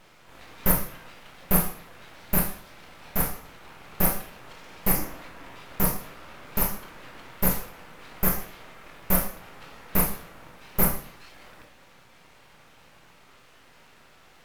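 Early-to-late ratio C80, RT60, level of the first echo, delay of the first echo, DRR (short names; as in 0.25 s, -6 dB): 11.0 dB, 0.55 s, none, none, 1.5 dB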